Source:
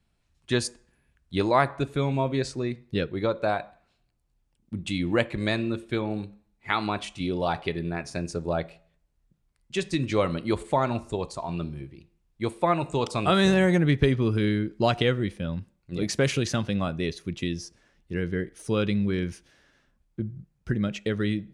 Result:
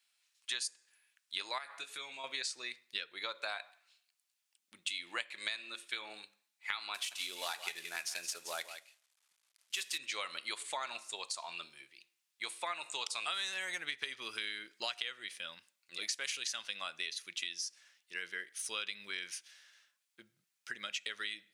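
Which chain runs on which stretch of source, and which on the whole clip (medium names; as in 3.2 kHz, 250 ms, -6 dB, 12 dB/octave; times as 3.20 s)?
1.58–2.24 s: compression 4:1, threshold -29 dBFS + doubling 19 ms -9 dB
6.94–9.98 s: CVSD coder 64 kbps + delay 171 ms -12.5 dB
whole clip: Bessel high-pass 2.9 kHz, order 2; compression 6:1, threshold -42 dBFS; trim +7 dB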